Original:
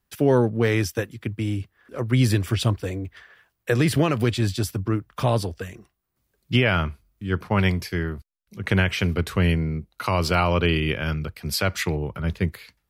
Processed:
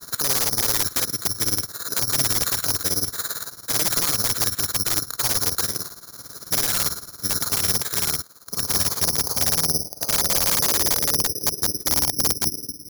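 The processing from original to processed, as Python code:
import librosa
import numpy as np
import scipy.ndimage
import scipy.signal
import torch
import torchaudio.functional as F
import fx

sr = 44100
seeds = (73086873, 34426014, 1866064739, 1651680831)

y = fx.bin_compress(x, sr, power=0.4)
y = fx.filter_sweep_lowpass(y, sr, from_hz=1400.0, to_hz=300.0, start_s=8.22, end_s=12.06, q=3.2)
y = fx.granulator(y, sr, seeds[0], grain_ms=70.0, per_s=18.0, spray_ms=12.0, spread_st=0)
y = (np.mod(10.0 ** (11.0 / 20.0) * y + 1.0, 2.0) - 1.0) / 10.0 ** (11.0 / 20.0)
y = (np.kron(scipy.signal.resample_poly(y, 1, 8), np.eye(8)[0]) * 8)[:len(y)]
y = y * 10.0 ** (-10.5 / 20.0)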